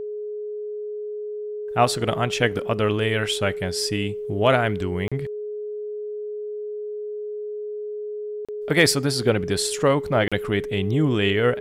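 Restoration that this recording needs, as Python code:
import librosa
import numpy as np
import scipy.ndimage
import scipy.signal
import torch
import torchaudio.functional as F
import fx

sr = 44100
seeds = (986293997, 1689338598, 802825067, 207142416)

y = fx.fix_declip(x, sr, threshold_db=-5.0)
y = fx.notch(y, sr, hz=420.0, q=30.0)
y = fx.fix_interpolate(y, sr, at_s=(5.08, 8.45, 10.28), length_ms=36.0)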